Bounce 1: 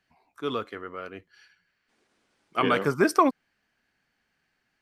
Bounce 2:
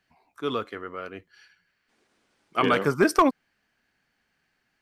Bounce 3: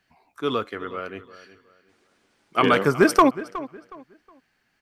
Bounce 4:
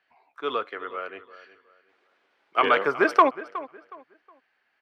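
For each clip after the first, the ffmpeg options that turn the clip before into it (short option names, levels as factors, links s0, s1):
-af "aeval=exprs='clip(val(0),-1,0.178)':c=same,volume=1.19"
-filter_complex "[0:a]asplit=2[s0][s1];[s1]adelay=366,lowpass=f=3600:p=1,volume=0.158,asplit=2[s2][s3];[s3]adelay=366,lowpass=f=3600:p=1,volume=0.29,asplit=2[s4][s5];[s5]adelay=366,lowpass=f=3600:p=1,volume=0.29[s6];[s0][s2][s4][s6]amix=inputs=4:normalize=0,volume=1.5"
-filter_complex "[0:a]acrossover=split=390 3800:gain=0.0891 1 0.0794[s0][s1][s2];[s0][s1][s2]amix=inputs=3:normalize=0"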